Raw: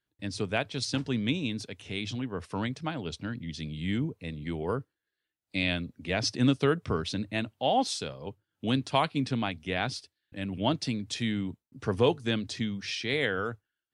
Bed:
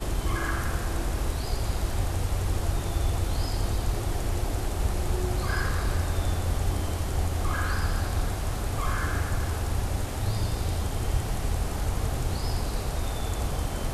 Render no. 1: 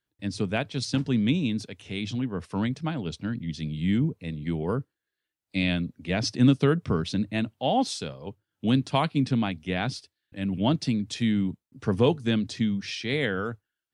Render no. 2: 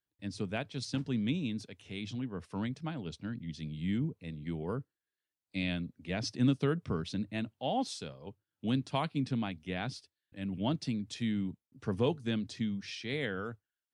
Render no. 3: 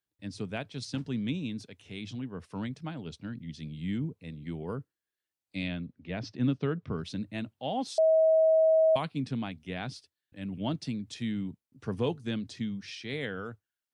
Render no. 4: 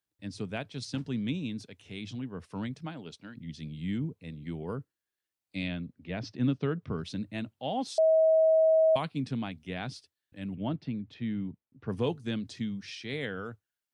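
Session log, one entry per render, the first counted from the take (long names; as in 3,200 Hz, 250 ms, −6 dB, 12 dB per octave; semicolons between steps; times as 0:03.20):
dynamic equaliser 180 Hz, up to +8 dB, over −43 dBFS, Q 0.94
level −8.5 dB
0:05.68–0:06.98: high-frequency loss of the air 170 metres; 0:07.98–0:08.96: beep over 640 Hz −19 dBFS
0:02.86–0:03.36: high-pass filter 160 Hz → 640 Hz 6 dB per octave; 0:10.55–0:11.90: high-frequency loss of the air 350 metres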